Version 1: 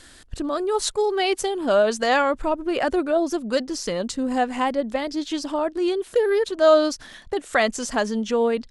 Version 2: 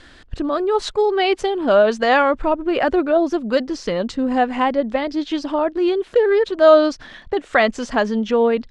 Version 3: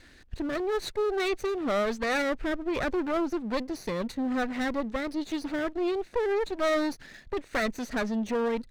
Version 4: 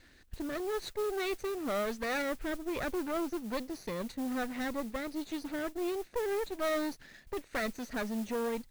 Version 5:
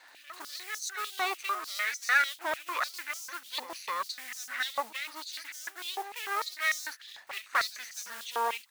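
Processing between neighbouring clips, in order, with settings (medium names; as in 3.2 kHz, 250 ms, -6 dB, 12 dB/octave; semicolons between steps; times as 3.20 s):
low-pass 3.5 kHz 12 dB/octave; trim +4.5 dB
comb filter that takes the minimum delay 0.48 ms; saturation -14.5 dBFS, distortion -13 dB; trim -7.5 dB
modulation noise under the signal 18 dB; trim -6 dB
pre-echo 255 ms -13.5 dB; step-sequenced high-pass 6.7 Hz 870–6000 Hz; trim +4.5 dB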